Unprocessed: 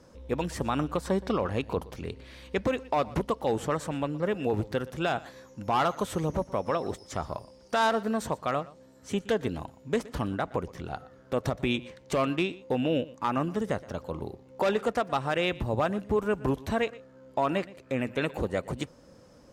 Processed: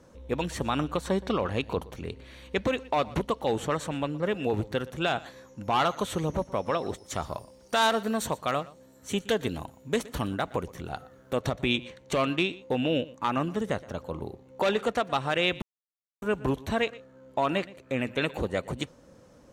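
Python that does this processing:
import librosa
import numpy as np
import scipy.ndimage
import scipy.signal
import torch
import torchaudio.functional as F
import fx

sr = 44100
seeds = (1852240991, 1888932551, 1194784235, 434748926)

y = fx.high_shelf(x, sr, hz=8900.0, db=12.0, at=(7.04, 11.37))
y = fx.edit(y, sr, fx.silence(start_s=15.62, length_s=0.6), tone=tone)
y = fx.dynamic_eq(y, sr, hz=3700.0, q=0.87, threshold_db=-47.0, ratio=4.0, max_db=6)
y = fx.notch(y, sr, hz=5000.0, q=6.3)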